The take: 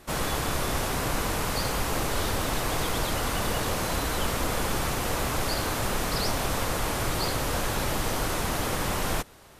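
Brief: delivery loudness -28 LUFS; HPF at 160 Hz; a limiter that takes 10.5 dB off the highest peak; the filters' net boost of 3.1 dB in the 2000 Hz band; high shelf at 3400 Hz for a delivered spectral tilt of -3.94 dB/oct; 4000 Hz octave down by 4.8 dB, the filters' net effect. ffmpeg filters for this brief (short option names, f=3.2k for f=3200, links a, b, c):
-af "highpass=160,equalizer=f=2k:t=o:g=6.5,highshelf=f=3.4k:g=-5,equalizer=f=4k:t=o:g=-5,volume=7dB,alimiter=limit=-20dB:level=0:latency=1"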